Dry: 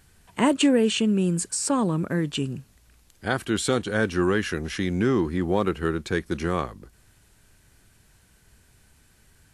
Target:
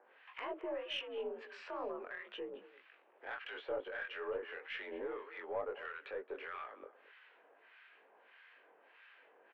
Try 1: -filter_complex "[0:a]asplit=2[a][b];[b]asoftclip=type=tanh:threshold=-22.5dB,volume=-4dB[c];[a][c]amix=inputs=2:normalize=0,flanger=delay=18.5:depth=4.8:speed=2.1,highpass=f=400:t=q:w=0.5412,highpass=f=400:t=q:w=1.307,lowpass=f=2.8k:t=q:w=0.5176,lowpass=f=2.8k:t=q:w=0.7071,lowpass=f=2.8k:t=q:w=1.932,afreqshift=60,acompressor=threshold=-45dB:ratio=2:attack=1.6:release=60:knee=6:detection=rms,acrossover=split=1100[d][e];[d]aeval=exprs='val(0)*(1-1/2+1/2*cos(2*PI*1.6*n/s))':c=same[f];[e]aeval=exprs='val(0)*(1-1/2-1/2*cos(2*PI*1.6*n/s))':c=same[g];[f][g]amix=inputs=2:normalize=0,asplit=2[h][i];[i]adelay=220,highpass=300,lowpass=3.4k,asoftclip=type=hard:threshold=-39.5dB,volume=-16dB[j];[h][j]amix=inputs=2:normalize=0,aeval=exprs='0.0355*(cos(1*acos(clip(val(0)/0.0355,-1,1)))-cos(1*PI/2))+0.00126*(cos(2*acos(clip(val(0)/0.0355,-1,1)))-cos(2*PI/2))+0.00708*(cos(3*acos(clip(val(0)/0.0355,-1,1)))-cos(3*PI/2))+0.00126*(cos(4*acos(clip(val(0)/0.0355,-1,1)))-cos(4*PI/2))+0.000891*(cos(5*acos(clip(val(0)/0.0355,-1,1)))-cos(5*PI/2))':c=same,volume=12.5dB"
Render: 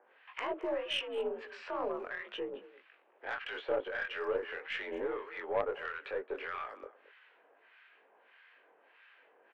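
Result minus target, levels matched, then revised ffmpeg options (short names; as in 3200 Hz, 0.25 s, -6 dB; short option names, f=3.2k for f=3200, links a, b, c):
compressor: peak gain reduction -5 dB
-filter_complex "[0:a]asplit=2[a][b];[b]asoftclip=type=tanh:threshold=-22.5dB,volume=-4dB[c];[a][c]amix=inputs=2:normalize=0,flanger=delay=18.5:depth=4.8:speed=2.1,highpass=f=400:t=q:w=0.5412,highpass=f=400:t=q:w=1.307,lowpass=f=2.8k:t=q:w=0.5176,lowpass=f=2.8k:t=q:w=0.7071,lowpass=f=2.8k:t=q:w=1.932,afreqshift=60,acompressor=threshold=-55.5dB:ratio=2:attack=1.6:release=60:knee=6:detection=rms,acrossover=split=1100[d][e];[d]aeval=exprs='val(0)*(1-1/2+1/2*cos(2*PI*1.6*n/s))':c=same[f];[e]aeval=exprs='val(0)*(1-1/2-1/2*cos(2*PI*1.6*n/s))':c=same[g];[f][g]amix=inputs=2:normalize=0,asplit=2[h][i];[i]adelay=220,highpass=300,lowpass=3.4k,asoftclip=type=hard:threshold=-39.5dB,volume=-16dB[j];[h][j]amix=inputs=2:normalize=0,aeval=exprs='0.0355*(cos(1*acos(clip(val(0)/0.0355,-1,1)))-cos(1*PI/2))+0.00126*(cos(2*acos(clip(val(0)/0.0355,-1,1)))-cos(2*PI/2))+0.00708*(cos(3*acos(clip(val(0)/0.0355,-1,1)))-cos(3*PI/2))+0.00126*(cos(4*acos(clip(val(0)/0.0355,-1,1)))-cos(4*PI/2))+0.000891*(cos(5*acos(clip(val(0)/0.0355,-1,1)))-cos(5*PI/2))':c=same,volume=12.5dB"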